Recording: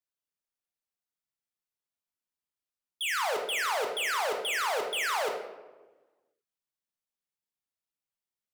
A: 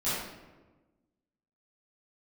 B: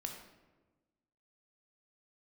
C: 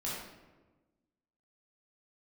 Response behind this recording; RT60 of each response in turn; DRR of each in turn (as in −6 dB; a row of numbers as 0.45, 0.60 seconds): B; 1.2, 1.2, 1.2 seconds; −14.5, 2.5, −7.5 decibels